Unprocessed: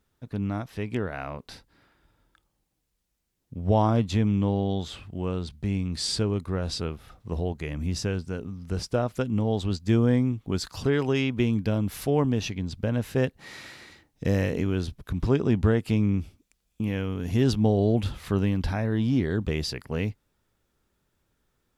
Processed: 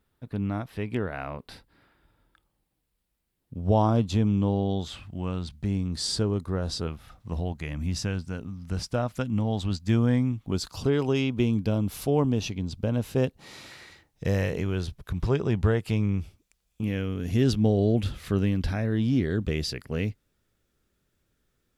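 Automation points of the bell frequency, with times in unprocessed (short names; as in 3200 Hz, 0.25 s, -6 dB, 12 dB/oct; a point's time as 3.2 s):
bell -7.5 dB 0.63 oct
6300 Hz
from 3.55 s 2000 Hz
from 4.87 s 420 Hz
from 5.65 s 2400 Hz
from 6.87 s 410 Hz
from 10.52 s 1800 Hz
from 13.71 s 260 Hz
from 16.83 s 910 Hz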